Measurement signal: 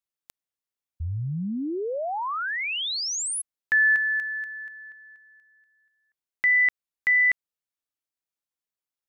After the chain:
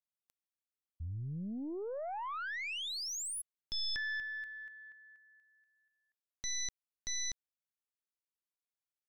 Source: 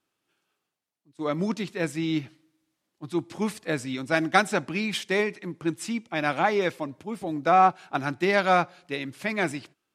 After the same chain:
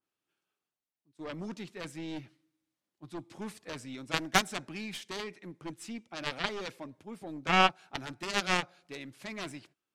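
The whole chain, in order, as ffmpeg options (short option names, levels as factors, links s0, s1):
-af "aeval=exprs='0.631*(cos(1*acos(clip(val(0)/0.631,-1,1)))-cos(1*PI/2))+0.0891*(cos(2*acos(clip(val(0)/0.631,-1,1)))-cos(2*PI/2))+0.112*(cos(3*acos(clip(val(0)/0.631,-1,1)))-cos(3*PI/2))+0.00891*(cos(6*acos(clip(val(0)/0.631,-1,1)))-cos(6*PI/2))+0.0708*(cos(7*acos(clip(val(0)/0.631,-1,1)))-cos(7*PI/2))':c=same,adynamicequalizer=threshold=0.0224:dfrequency=3100:dqfactor=0.7:tfrequency=3100:tqfactor=0.7:attack=5:release=100:ratio=0.375:range=1.5:mode=boostabove:tftype=highshelf"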